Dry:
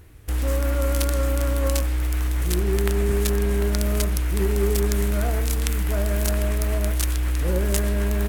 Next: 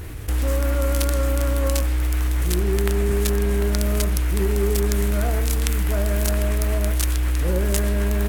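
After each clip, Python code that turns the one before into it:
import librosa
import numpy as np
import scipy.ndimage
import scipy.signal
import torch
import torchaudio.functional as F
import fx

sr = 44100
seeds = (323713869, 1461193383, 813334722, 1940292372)

y = fx.env_flatten(x, sr, amount_pct=50)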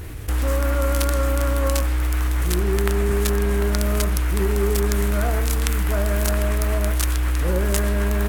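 y = fx.dynamic_eq(x, sr, hz=1200.0, q=1.1, threshold_db=-45.0, ratio=4.0, max_db=5)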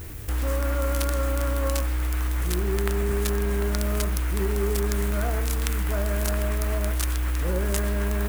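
y = fx.dmg_noise_colour(x, sr, seeds[0], colour='violet', level_db=-41.0)
y = F.gain(torch.from_numpy(y), -4.5).numpy()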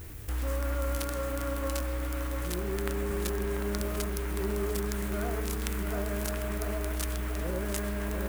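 y = fx.echo_filtered(x, sr, ms=690, feedback_pct=63, hz=2100.0, wet_db=-6.0)
y = F.gain(torch.from_numpy(y), -6.0).numpy()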